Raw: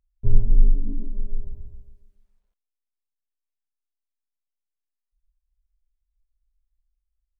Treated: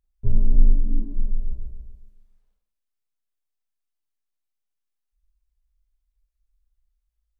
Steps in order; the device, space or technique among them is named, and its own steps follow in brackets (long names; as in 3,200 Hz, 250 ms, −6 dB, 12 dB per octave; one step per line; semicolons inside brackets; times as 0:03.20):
bathroom (convolution reverb RT60 0.55 s, pre-delay 32 ms, DRR 1 dB)
level −1 dB